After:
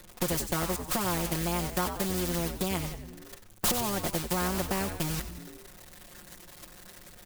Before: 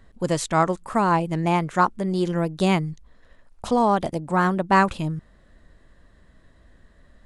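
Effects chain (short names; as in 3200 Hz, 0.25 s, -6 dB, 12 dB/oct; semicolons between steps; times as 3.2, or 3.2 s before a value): switching spikes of -15 dBFS; tilt shelf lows +8.5 dB, about 870 Hz; bit-crush 7-bit; compressor 12:1, threshold -27 dBFS, peak gain reduction 18 dB; gate -32 dBFS, range -30 dB; comb 5.6 ms, depth 95%; frequency-shifting echo 93 ms, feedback 47%, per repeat -110 Hz, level -13 dB; spectral compressor 2:1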